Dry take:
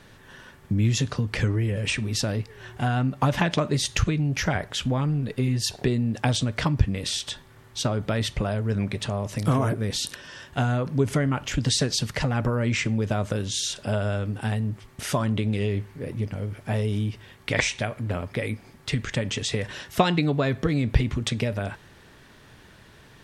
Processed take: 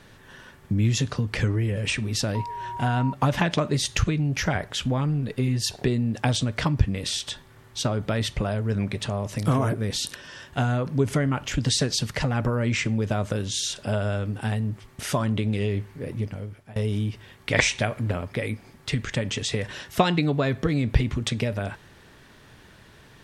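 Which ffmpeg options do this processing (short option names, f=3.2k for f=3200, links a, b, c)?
-filter_complex "[0:a]asettb=1/sr,asplit=3[a][b][c];[a]atrim=end=2.354[d];[b]atrim=start=2.35:end=3.13,asetpts=PTS-STARTPTS,afade=t=in:d=0.004:c=qsin,afade=t=out:st=0.776:d=0.004:c=qsin,aeval=exprs='val(0)+0.0282*sin(2*PI*950*n/s)':c=same[e];[c]atrim=start=3.126[f];[d][e]acrossfade=d=0.004:c1=hsin:c2=qsin[g];[g][f]acrossfade=d=0.004:c1=qsin:c2=hsin,asplit=4[h][i][j][k];[h]atrim=end=16.76,asetpts=PTS-STARTPTS,afade=t=out:st=16.2:d=0.56:silence=0.0707946[l];[i]atrim=start=16.76:end=17.532,asetpts=PTS-STARTPTS,afade=t=in:d=0.004:c=hsin:silence=0.0707946[m];[j]atrim=start=17.528:end=18.112,asetpts=PTS-STARTPTS,volume=3dB[n];[k]atrim=start=18.108[o];[l][m]concat=n=2:v=0:a=1[p];[p][n]acrossfade=d=0.004:c1=hsin:c2=hsin[q];[q][o]acrossfade=d=0.004:c1=hsin:c2=hsin"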